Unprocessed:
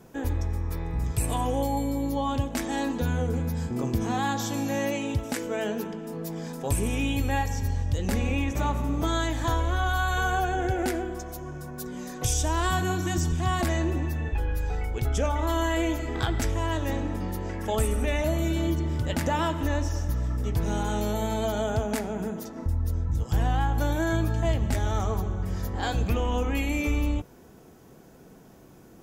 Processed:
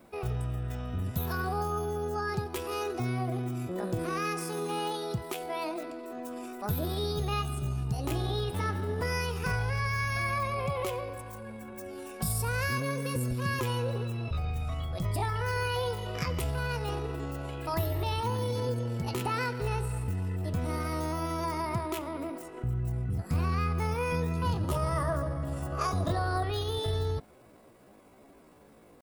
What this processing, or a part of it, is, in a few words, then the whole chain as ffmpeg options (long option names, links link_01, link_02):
chipmunk voice: -filter_complex "[0:a]asettb=1/sr,asplit=3[link_01][link_02][link_03];[link_01]atrim=end=24.654[link_04];[link_02]atrim=start=24.65:end=26.45,asetpts=PTS-STARTPTS,afade=type=in:duration=0.004:curve=qsin,afade=type=out:start_time=1.796:duration=0.004:curve=qsin,equalizer=frequency=400:width_type=o:width=0.33:gain=11,equalizer=frequency=800:width_type=o:width=0.33:gain=8,equalizer=frequency=1600:width_type=o:width=0.33:gain=-9,equalizer=frequency=6300:width_type=o:width=0.33:gain=4[link_05];[link_03]atrim=start=26.446[link_06];[link_04][link_05]acrossfade=duration=0.004:curve1=hsin:curve2=qsin[link_07];[link_07][link_06]acrossfade=duration=0.004:curve1=qsin:curve2=hsin,asetrate=66075,aresample=44100,atempo=0.66742,volume=-5dB"